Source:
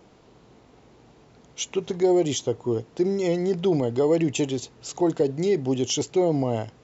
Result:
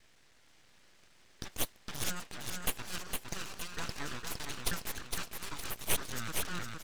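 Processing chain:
slices reordered back to front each 157 ms, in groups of 3
high-pass filter 830 Hz 24 dB per octave
repeating echo 461 ms, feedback 43%, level −4 dB
full-wave rectification

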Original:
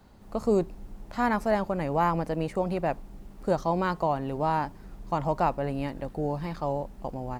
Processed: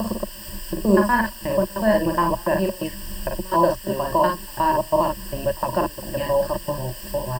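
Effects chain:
slices reordered back to front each 121 ms, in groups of 4
ambience of single reflections 41 ms −6 dB, 54 ms −6 dB
gate pattern "xx.xx.xxx" 128 BPM −24 dB
background noise white −46 dBFS
in parallel at +3 dB: downward compressor, threshold −47 dBFS, peak gain reduction 26.5 dB
on the sum: EQ curve with evenly spaced ripples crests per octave 1.3, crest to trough 17 dB
level +1.5 dB

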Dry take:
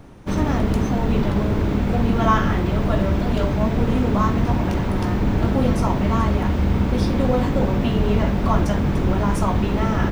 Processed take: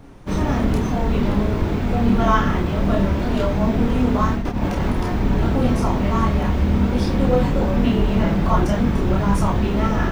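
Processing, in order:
0:04.34–0:04.90: compressor whose output falls as the input rises −21 dBFS, ratio −0.5
multi-voice chorus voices 6, 0.25 Hz, delay 29 ms, depth 4.2 ms
level +3.5 dB

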